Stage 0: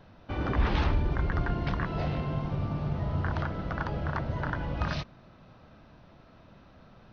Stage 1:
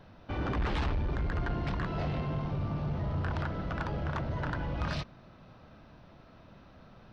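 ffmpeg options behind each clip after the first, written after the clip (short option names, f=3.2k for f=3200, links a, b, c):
-af "asoftclip=type=tanh:threshold=-26dB"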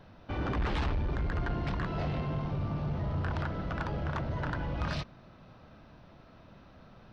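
-af anull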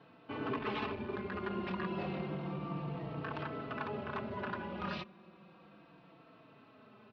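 -filter_complex "[0:a]highpass=190,equalizer=f=200:t=q:w=4:g=8,equalizer=f=390:t=q:w=4:g=8,equalizer=f=1.1k:t=q:w=4:g=5,equalizer=f=2.6k:t=q:w=4:g=7,lowpass=f=4.5k:w=0.5412,lowpass=f=4.5k:w=1.3066,asplit=2[a][b];[b]adelay=4,afreqshift=-0.32[c];[a][c]amix=inputs=2:normalize=1,volume=-2dB"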